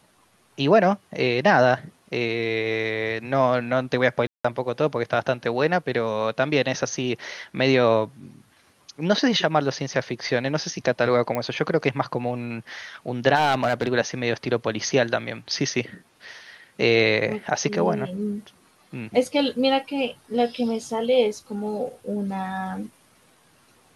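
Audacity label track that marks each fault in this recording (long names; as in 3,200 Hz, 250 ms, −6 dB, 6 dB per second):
4.270000	4.450000	drop-out 175 ms
11.350000	11.350000	click −13 dBFS
13.350000	13.890000	clipping −15.5 dBFS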